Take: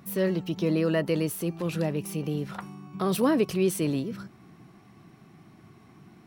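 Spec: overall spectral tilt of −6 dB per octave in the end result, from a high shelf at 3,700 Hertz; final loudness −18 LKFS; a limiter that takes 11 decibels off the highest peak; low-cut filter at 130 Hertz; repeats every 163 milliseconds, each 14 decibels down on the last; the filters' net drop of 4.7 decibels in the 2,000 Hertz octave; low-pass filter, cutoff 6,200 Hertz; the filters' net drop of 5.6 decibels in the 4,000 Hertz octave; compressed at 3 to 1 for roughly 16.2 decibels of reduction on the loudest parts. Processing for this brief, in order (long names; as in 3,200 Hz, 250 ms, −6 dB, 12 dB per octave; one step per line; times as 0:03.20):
high-pass filter 130 Hz
low-pass filter 6,200 Hz
parametric band 2,000 Hz −5 dB
high-shelf EQ 3,700 Hz +6 dB
parametric band 4,000 Hz −9 dB
downward compressor 3 to 1, threshold −42 dBFS
brickwall limiter −36.5 dBFS
repeating echo 163 ms, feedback 20%, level −14 dB
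level +28.5 dB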